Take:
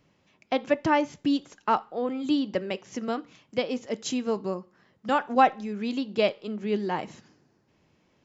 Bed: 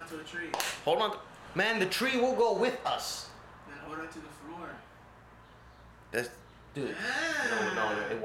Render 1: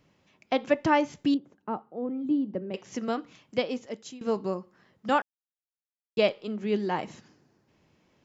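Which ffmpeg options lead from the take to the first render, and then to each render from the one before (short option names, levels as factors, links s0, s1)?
-filter_complex "[0:a]asettb=1/sr,asplit=3[s0][s1][s2];[s0]atrim=end=1.344[s3];[s1]atrim=start=1.34:end=2.74,asetpts=PTS-STARTPTS,afade=t=in:d=0.004:c=qsin,afade=t=out:st=1.396:d=0.004:c=qsin,bandpass=f=210:t=q:w=0.81[s4];[s2]atrim=start=2.736[s5];[s3][s4]acrossfade=d=0.004:c1=hsin:c2=qsin[s6];[s6][s5]acrossfade=d=0.004:c1=qsin:c2=hsin,asplit=4[s7][s8][s9][s10];[s7]atrim=end=4.21,asetpts=PTS-STARTPTS,afade=t=out:st=3.59:d=0.62:silence=0.0841395[s11];[s8]atrim=start=4.21:end=5.22,asetpts=PTS-STARTPTS,afade=t=in:d=0.004:c=hsin:silence=0.0841395,afade=t=out:st=1.006:d=0.004:c=hsin[s12];[s9]atrim=start=5.22:end=6.17,asetpts=PTS-STARTPTS,volume=0[s13];[s10]atrim=start=6.17,asetpts=PTS-STARTPTS,afade=t=in:d=0.004:c=hsin[s14];[s11][s12][s13][s14]concat=n=4:v=0:a=1"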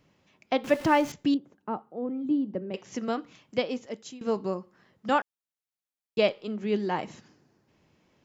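-filter_complex "[0:a]asettb=1/sr,asplit=3[s0][s1][s2];[s0]atrim=end=0.644[s3];[s1]atrim=start=0.64:end=1.12,asetpts=PTS-STARTPTS,afade=t=in:d=0.004:c=qsin,afade=t=out:st=0.476:d=0.004:c=qsin,aeval=exprs='val(0)+0.5*0.015*sgn(val(0))':c=same[s4];[s2]atrim=start=1.116[s5];[s3][s4]acrossfade=d=0.004:c1=hsin:c2=qsin[s6];[s6][s5]acrossfade=d=0.004:c1=qsin:c2=hsin"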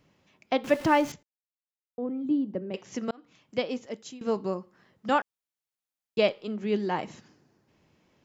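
-filter_complex "[0:a]asplit=4[s0][s1][s2][s3];[s0]atrim=end=1.23,asetpts=PTS-STARTPTS,afade=t=out:st=1.226:d=0.004:c=hsin[s4];[s1]atrim=start=1.23:end=1.98,asetpts=PTS-STARTPTS,volume=0[s5];[s2]atrim=start=1.98:end=3.11,asetpts=PTS-STARTPTS,afade=t=in:d=0.004:c=hsin,afade=t=out:st=1.126:d=0.004:c=hsin[s6];[s3]atrim=start=3.11,asetpts=PTS-STARTPTS,afade=t=in:d=0.74:c=qsin[s7];[s4][s5][s6][s7]concat=n=4:v=0:a=1"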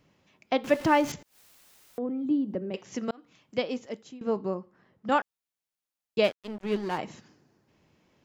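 -filter_complex "[0:a]asettb=1/sr,asplit=3[s0][s1][s2];[s0]atrim=end=1.044[s3];[s1]atrim=start=1.04:end=2.7,asetpts=PTS-STARTPTS,afade=t=in:d=0.004:c=qsin,afade=t=out:st=1.656:d=0.004:c=qsin,acompressor=mode=upward:threshold=0.0398:ratio=2.5:attack=3.2:release=140:knee=2.83:detection=peak[s4];[s2]atrim=start=2.696[s5];[s3][s4]acrossfade=d=0.004:c1=hsin:c2=qsin[s6];[s6][s5]acrossfade=d=0.004:c1=qsin:c2=hsin,asettb=1/sr,asplit=3[s7][s8][s9];[s7]atrim=end=4.024[s10];[s8]atrim=start=4.02:end=5.12,asetpts=PTS-STARTPTS,afade=t=in:d=0.004:c=qsin,afade=t=out:st=1.096:d=0.004:c=qsin,highshelf=f=2800:g=-11.5[s11];[s9]atrim=start=5.116[s12];[s10][s11]acrossfade=d=0.004:c1=hsin:c2=qsin[s13];[s13][s12]acrossfade=d=0.004:c1=qsin:c2=hsin,asplit=3[s14][s15][s16];[s14]afade=t=out:st=6.23:d=0.02[s17];[s15]aeval=exprs='sgn(val(0))*max(abs(val(0))-0.0126,0)':c=same,afade=t=in:st=6.23:d=0.02,afade=t=out:st=6.97:d=0.02[s18];[s16]afade=t=in:st=6.97:d=0.02[s19];[s17][s18][s19]amix=inputs=3:normalize=0"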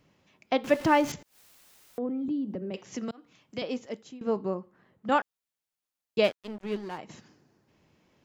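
-filter_complex "[0:a]asettb=1/sr,asplit=3[s0][s1][s2];[s0]atrim=end=2.284[s3];[s1]atrim=start=2.28:end=3.62,asetpts=PTS-STARTPTS,afade=t=in:d=0.004:c=qsin,afade=t=out:st=1.336:d=0.004:c=qsin,acrossover=split=230|3000[s4][s5][s6];[s5]acompressor=threshold=0.0224:ratio=6:attack=3.2:release=140:knee=2.83:detection=peak[s7];[s4][s7][s6]amix=inputs=3:normalize=0[s8];[s2]atrim=start=3.616[s9];[s3][s8]acrossfade=d=0.004:c1=hsin:c2=qsin[s10];[s10][s9]acrossfade=d=0.004:c1=qsin:c2=hsin,asettb=1/sr,asplit=3[s11][s12][s13];[s11]atrim=end=4.434[s14];[s12]atrim=start=4.43:end=5.15,asetpts=PTS-STARTPTS,afade=t=in:d=0.004:c=qsin,afade=t=out:st=0.716:d=0.004:c=qsin,equalizer=f=5300:w=5.6:g=-7.5[s15];[s13]atrim=start=5.146[s16];[s14][s15]acrossfade=d=0.004:c1=hsin:c2=qsin[s17];[s17][s16]acrossfade=d=0.004:c1=qsin:c2=hsin,asplit=2[s18][s19];[s18]atrim=end=7.09,asetpts=PTS-STARTPTS,afade=t=out:st=6.38:d=0.71:silence=0.281838[s20];[s19]atrim=start=7.09,asetpts=PTS-STARTPTS,afade=t=in:d=0.004:c=hsin:silence=0.281838[s21];[s20][s21]concat=n=2:v=0:a=1"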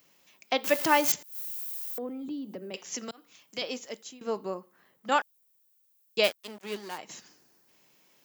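-af "highpass=86,aemphasis=mode=production:type=riaa"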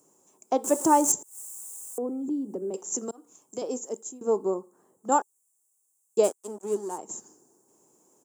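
-af "firequalizer=gain_entry='entry(140,0);entry(390,11);entry(580,1);entry(860,5);entry(2000,-20);entry(4400,-16);entry(7400,14);entry(15000,-11)':delay=0.05:min_phase=1"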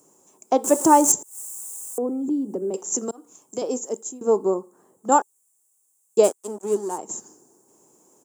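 -af "volume=1.88"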